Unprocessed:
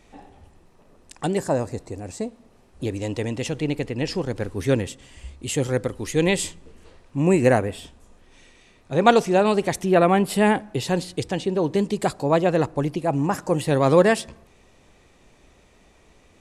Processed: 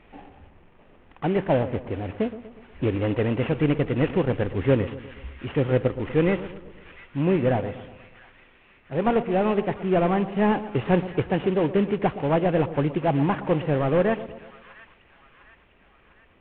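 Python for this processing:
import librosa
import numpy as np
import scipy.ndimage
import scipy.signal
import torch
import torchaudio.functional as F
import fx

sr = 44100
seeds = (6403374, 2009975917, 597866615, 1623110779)

y = fx.cvsd(x, sr, bps=16000)
y = fx.rider(y, sr, range_db=4, speed_s=0.5)
y = fx.echo_split(y, sr, split_hz=1200.0, low_ms=121, high_ms=702, feedback_pct=52, wet_db=-14)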